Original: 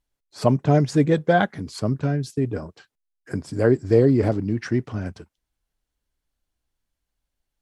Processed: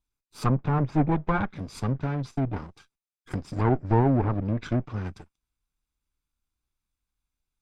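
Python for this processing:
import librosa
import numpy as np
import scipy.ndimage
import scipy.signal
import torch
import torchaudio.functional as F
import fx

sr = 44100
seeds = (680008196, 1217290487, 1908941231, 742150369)

y = fx.lower_of_two(x, sr, delay_ms=0.82)
y = fx.env_lowpass_down(y, sr, base_hz=1500.0, full_db=-17.5)
y = y * 10.0 ** (-3.0 / 20.0)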